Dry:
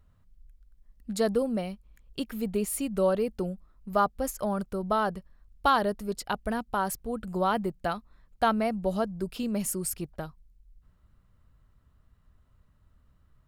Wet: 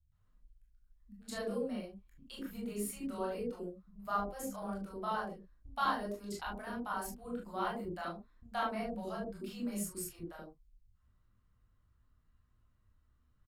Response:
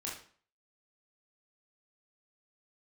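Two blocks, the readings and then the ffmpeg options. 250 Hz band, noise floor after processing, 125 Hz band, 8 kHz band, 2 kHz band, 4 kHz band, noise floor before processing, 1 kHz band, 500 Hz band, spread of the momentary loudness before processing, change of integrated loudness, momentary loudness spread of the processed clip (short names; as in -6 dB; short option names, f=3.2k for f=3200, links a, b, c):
-9.5 dB, -72 dBFS, -11.5 dB, -9.5 dB, -7.5 dB, -8.5 dB, -64 dBFS, -9.0 dB, -11.5 dB, 12 LU, -10.0 dB, 12 LU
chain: -filter_complex "[0:a]acrossover=split=160|610[a][b][c];[c]adelay=120[d];[b]adelay=200[e];[a][e][d]amix=inputs=3:normalize=0[f];[1:a]atrim=start_sample=2205,atrim=end_sample=3528[g];[f][g]afir=irnorm=-1:irlink=0,volume=-8dB"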